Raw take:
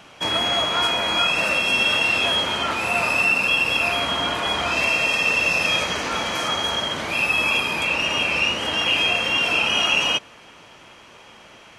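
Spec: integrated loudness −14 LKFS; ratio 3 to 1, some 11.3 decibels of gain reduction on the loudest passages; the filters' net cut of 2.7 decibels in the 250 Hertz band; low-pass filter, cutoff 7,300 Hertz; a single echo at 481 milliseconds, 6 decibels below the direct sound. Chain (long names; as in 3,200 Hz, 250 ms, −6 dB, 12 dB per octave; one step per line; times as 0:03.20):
low-pass filter 7,300 Hz
parametric band 250 Hz −3.5 dB
downward compressor 3 to 1, threshold −32 dBFS
single-tap delay 481 ms −6 dB
level +14.5 dB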